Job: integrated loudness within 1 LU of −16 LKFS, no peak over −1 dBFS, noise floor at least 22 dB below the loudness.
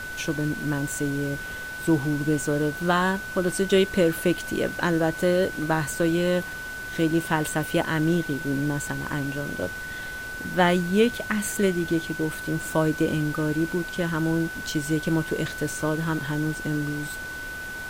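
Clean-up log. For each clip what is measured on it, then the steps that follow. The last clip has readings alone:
interfering tone 1,500 Hz; level of the tone −33 dBFS; background noise floor −35 dBFS; target noise floor −48 dBFS; integrated loudness −25.5 LKFS; sample peak −7.5 dBFS; target loudness −16.0 LKFS
→ notch filter 1,500 Hz, Q 30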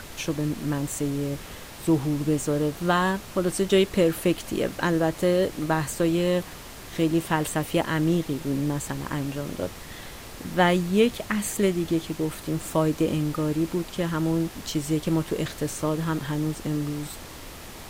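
interfering tone none found; background noise floor −41 dBFS; target noise floor −48 dBFS
→ noise reduction from a noise print 7 dB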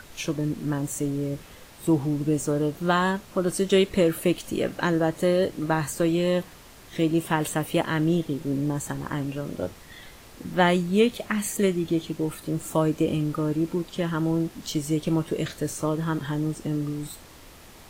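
background noise floor −48 dBFS; integrated loudness −26.0 LKFS; sample peak −8.0 dBFS; target loudness −16.0 LKFS
→ level +10 dB
brickwall limiter −1 dBFS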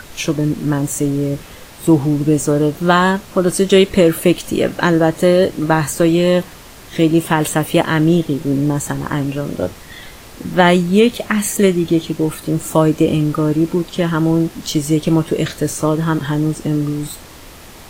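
integrated loudness −16.0 LKFS; sample peak −1.0 dBFS; background noise floor −38 dBFS

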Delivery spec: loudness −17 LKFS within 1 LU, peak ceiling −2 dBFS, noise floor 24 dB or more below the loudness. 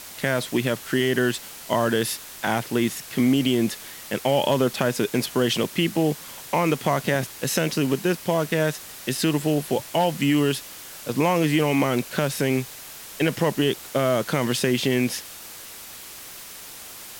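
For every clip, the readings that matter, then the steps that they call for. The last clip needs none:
background noise floor −41 dBFS; target noise floor −48 dBFS; integrated loudness −23.5 LKFS; sample peak −5.0 dBFS; target loudness −17.0 LKFS
→ broadband denoise 7 dB, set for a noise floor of −41 dBFS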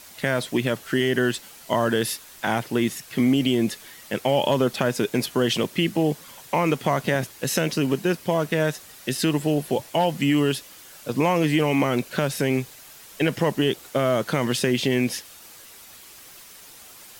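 background noise floor −46 dBFS; target noise floor −48 dBFS
→ broadband denoise 6 dB, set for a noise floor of −46 dBFS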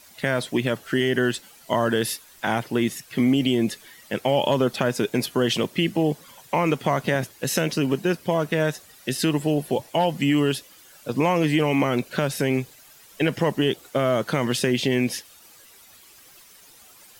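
background noise floor −51 dBFS; integrated loudness −23.5 LKFS; sample peak −5.0 dBFS; target loudness −17.0 LKFS
→ level +6.5 dB
brickwall limiter −2 dBFS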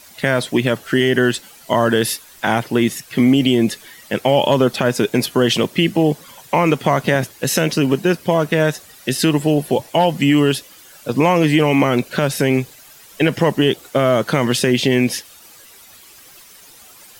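integrated loudness −17.0 LKFS; sample peak −2.0 dBFS; background noise floor −44 dBFS

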